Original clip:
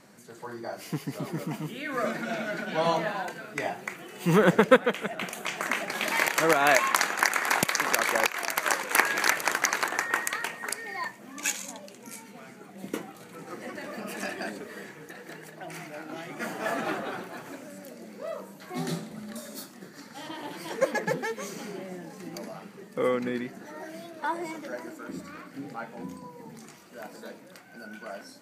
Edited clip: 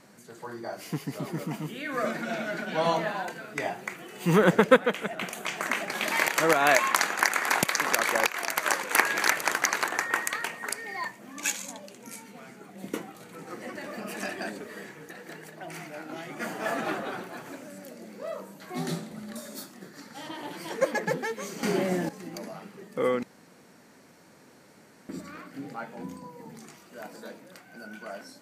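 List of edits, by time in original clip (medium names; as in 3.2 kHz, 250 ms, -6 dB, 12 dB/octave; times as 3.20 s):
21.63–22.09 s: gain +12 dB
23.23–25.09 s: room tone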